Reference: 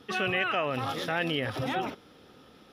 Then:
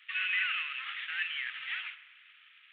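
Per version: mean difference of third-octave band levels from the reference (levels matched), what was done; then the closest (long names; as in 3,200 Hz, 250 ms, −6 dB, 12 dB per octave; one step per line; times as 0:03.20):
21.0 dB: variable-slope delta modulation 16 kbit/s
inverse Chebyshev high-pass filter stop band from 730 Hz, stop band 50 dB
spring reverb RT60 1.4 s, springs 45 ms, chirp 70 ms, DRR 13 dB
level +5.5 dB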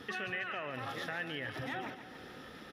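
6.0 dB: parametric band 1,800 Hz +10.5 dB 0.38 octaves
downward compressor 3 to 1, threshold −46 dBFS, peak gain reduction 19 dB
repeating echo 144 ms, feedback 58%, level −11 dB
level +3.5 dB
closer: second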